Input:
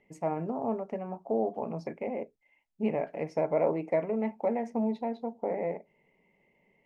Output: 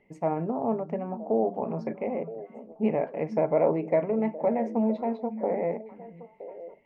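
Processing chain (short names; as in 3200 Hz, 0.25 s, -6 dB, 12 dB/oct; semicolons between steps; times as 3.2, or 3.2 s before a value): LPF 2200 Hz 6 dB/oct; delay with a stepping band-pass 0.484 s, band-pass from 180 Hz, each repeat 1.4 oct, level -9.5 dB; gain +4 dB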